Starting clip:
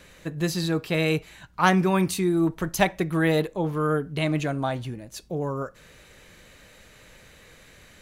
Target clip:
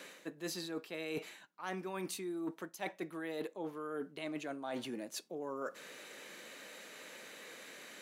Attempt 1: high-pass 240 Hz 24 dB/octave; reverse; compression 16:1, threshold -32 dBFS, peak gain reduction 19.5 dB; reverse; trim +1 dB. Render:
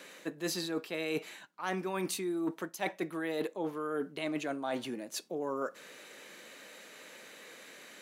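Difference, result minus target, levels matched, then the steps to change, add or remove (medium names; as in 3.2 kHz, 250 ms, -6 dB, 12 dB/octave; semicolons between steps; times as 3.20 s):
compression: peak gain reduction -6 dB
change: compression 16:1, threshold -38.5 dBFS, peak gain reduction 25.5 dB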